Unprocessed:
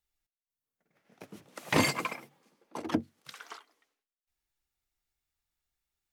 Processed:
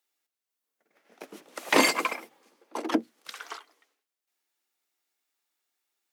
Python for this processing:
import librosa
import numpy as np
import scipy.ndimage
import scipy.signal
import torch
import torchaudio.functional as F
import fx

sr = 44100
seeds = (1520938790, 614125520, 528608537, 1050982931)

y = scipy.signal.sosfilt(scipy.signal.butter(4, 270.0, 'highpass', fs=sr, output='sos'), x)
y = y * librosa.db_to_amplitude(6.0)